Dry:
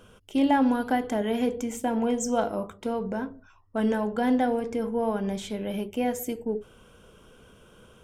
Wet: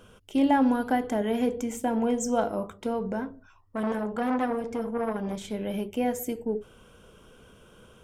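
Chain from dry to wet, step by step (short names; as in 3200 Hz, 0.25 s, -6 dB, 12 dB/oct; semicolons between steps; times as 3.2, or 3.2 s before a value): dynamic EQ 3700 Hz, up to -3 dB, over -44 dBFS, Q 0.84; 3.2–5.51 core saturation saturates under 760 Hz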